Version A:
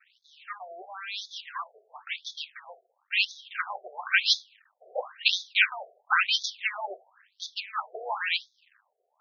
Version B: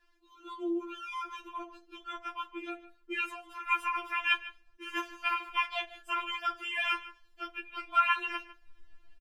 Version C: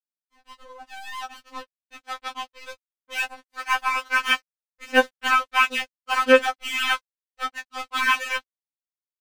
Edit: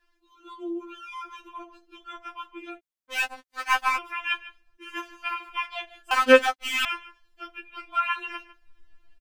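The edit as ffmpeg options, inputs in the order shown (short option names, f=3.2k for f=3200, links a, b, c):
-filter_complex "[2:a]asplit=2[a][b];[1:a]asplit=3[c][d][e];[c]atrim=end=2.81[f];[a]atrim=start=2.77:end=3.99[g];[d]atrim=start=3.95:end=6.112[h];[b]atrim=start=6.108:end=6.852[i];[e]atrim=start=6.848[j];[f][g]acrossfade=d=0.04:c1=tri:c2=tri[k];[k][h]acrossfade=d=0.04:c1=tri:c2=tri[l];[l][i]acrossfade=d=0.004:c1=hsin:c2=hsin[m];[m][j]acrossfade=d=0.004:c1=hsin:c2=hsin"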